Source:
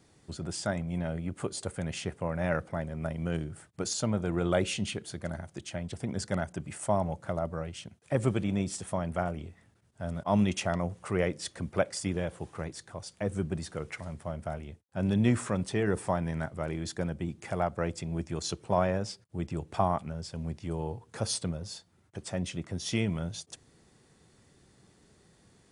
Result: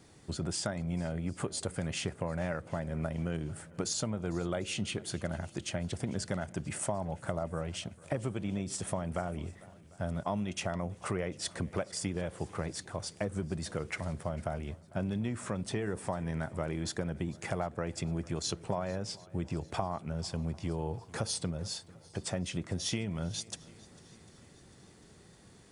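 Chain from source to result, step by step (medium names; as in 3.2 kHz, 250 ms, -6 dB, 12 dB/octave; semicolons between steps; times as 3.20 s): compression 12:1, threshold -34 dBFS, peak gain reduction 15.5 dB; on a send: shuffle delay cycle 747 ms, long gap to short 1.5:1, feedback 43%, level -22 dB; on the sum: trim +4 dB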